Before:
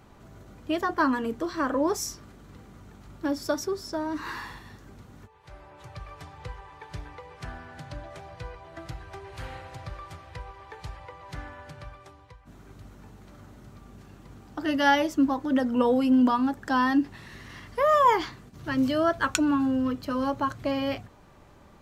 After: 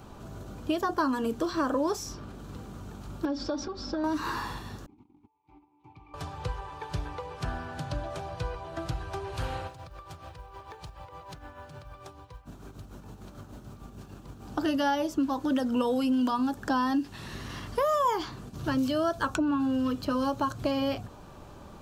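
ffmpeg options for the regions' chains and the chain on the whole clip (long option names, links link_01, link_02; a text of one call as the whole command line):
ffmpeg -i in.wav -filter_complex "[0:a]asettb=1/sr,asplit=3[link_01][link_02][link_03];[link_01]atrim=end=3.254[link_04];[link_02]atrim=start=3.25:end=4.04,asetpts=PTS-STARTPTS,afade=type=in:duration=0.004:curve=qsin,afade=type=out:start_time=0.786:duration=0.004:curve=qsin,lowpass=frequency=5100:width=0.5412,lowpass=frequency=5100:width=1.3066,acompressor=threshold=-35dB:ratio=6:attack=3.2:release=140:knee=1:detection=peak,aecho=1:1:3.7:0.88,atrim=end_sample=34839[link_05];[link_03]atrim=start=4.036[link_06];[link_04][link_05]acrossfade=duration=0.004:curve1=hsin:curve2=qsin[link_07];[link_07][link_06]acrossfade=duration=0.004:curve1=qsin:curve2=hsin,asettb=1/sr,asplit=3[link_08][link_09][link_10];[link_08]atrim=end=4.864[link_11];[link_09]atrim=start=4.86:end=6.14,asetpts=PTS-STARTPTS,afade=type=in:duration=0.004:curve=qsin,afade=type=out:start_time=1.276:duration=0.004:curve=qsin,agate=range=-14dB:threshold=-48dB:ratio=16:release=100:detection=peak,asplit=3[link_12][link_13][link_14];[link_12]bandpass=frequency=300:width_type=q:width=8,volume=0dB[link_15];[link_13]bandpass=frequency=870:width_type=q:width=8,volume=-6dB[link_16];[link_14]bandpass=frequency=2240:width_type=q:width=8,volume=-9dB[link_17];[link_15][link_16][link_17]amix=inputs=3:normalize=0,lowshelf=frequency=110:gain=11[link_18];[link_10]atrim=start=6.136[link_19];[link_11][link_18]acrossfade=duration=0.004:curve1=hsin:curve2=qsin[link_20];[link_20][link_19]acrossfade=duration=0.004:curve1=qsin:curve2=hsin,asettb=1/sr,asplit=3[link_21][link_22][link_23];[link_21]atrim=end=9.674[link_24];[link_22]atrim=start=9.67:end=14.47,asetpts=PTS-STARTPTS,afade=type=in:duration=0.004:curve=qsin,afade=type=out:start_time=4.796:duration=0.004:curve=qsin,acompressor=threshold=-44dB:ratio=16:attack=3.2:release=140:knee=1:detection=peak,tremolo=f=6.7:d=0.57,acrusher=bits=8:mode=log:mix=0:aa=0.000001[link_25];[link_23]atrim=start=14.466[link_26];[link_24][link_25]acrossfade=duration=0.004:curve1=hsin:curve2=qsin[link_27];[link_27][link_26]acrossfade=duration=0.004:curve1=qsin:curve2=hsin,equalizer=frequency=2000:width=3.7:gain=-10,acrossover=split=1500|4200[link_28][link_29][link_30];[link_28]acompressor=threshold=-33dB:ratio=4[link_31];[link_29]acompressor=threshold=-49dB:ratio=4[link_32];[link_30]acompressor=threshold=-53dB:ratio=4[link_33];[link_31][link_32][link_33]amix=inputs=3:normalize=0,volume=6.5dB" out.wav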